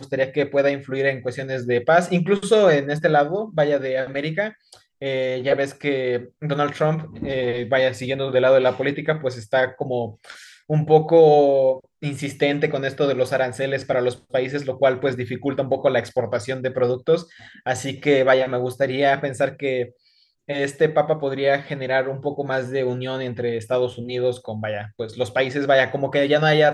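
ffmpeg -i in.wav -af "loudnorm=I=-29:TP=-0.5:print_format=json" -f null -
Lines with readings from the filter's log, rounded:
"input_i" : "-21.1",
"input_tp" : "-3.5",
"input_lra" : "4.2",
"input_thresh" : "-31.4",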